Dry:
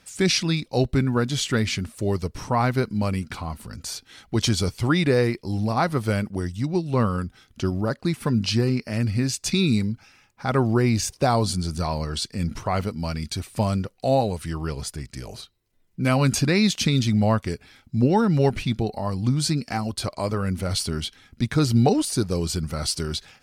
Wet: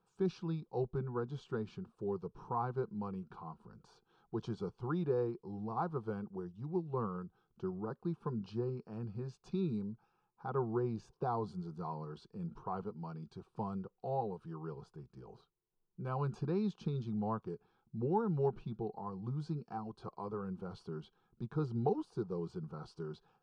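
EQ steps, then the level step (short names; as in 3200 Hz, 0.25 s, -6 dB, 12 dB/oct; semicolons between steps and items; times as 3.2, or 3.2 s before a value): Bessel low-pass 950 Hz, order 2; low shelf 200 Hz -9.5 dB; fixed phaser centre 400 Hz, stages 8; -8.0 dB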